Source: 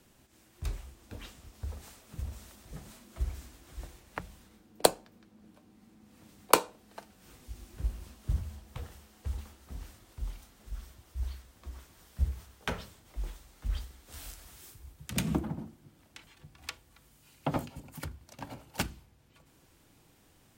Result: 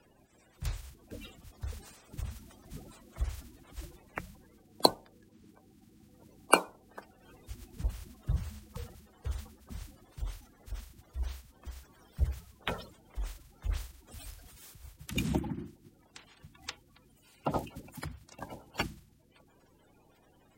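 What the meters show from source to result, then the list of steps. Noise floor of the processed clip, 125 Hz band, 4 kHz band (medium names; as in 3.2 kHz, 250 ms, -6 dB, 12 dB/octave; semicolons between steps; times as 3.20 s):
-64 dBFS, -0.5 dB, +2.0 dB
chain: coarse spectral quantiser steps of 30 dB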